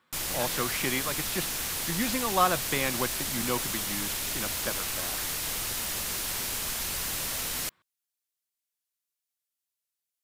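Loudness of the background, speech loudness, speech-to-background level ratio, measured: −30.0 LKFS, −32.5 LKFS, −2.5 dB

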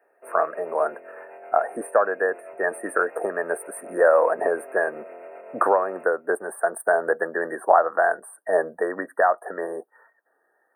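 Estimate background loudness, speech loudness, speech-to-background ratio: −43.0 LKFS, −24.0 LKFS, 19.0 dB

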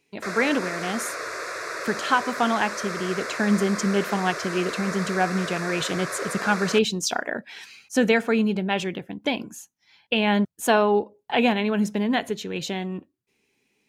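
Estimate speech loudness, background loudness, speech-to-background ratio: −24.5 LKFS, −31.5 LKFS, 7.0 dB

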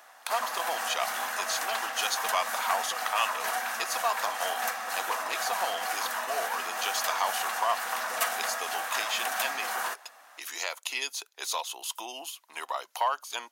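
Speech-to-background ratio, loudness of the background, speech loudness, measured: −1.5 dB, −31.5 LKFS, −33.0 LKFS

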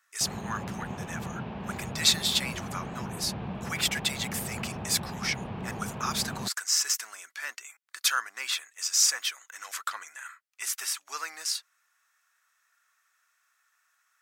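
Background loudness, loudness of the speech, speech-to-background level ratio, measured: −38.0 LKFS, −29.0 LKFS, 9.0 dB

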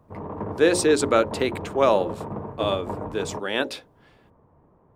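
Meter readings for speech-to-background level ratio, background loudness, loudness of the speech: 11.0 dB, −34.5 LKFS, −23.5 LKFS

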